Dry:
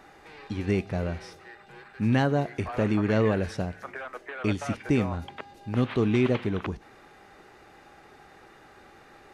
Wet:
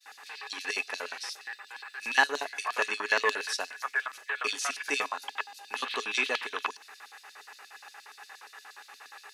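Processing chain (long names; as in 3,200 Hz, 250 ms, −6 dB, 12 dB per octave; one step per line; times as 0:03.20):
auto-filter high-pass square 8.5 Hz 960–4,300 Hz
spectral tilt +3.5 dB per octave
hollow resonant body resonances 270/420/1,700/2,600 Hz, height 14 dB, ringing for 65 ms
downward expander −49 dBFS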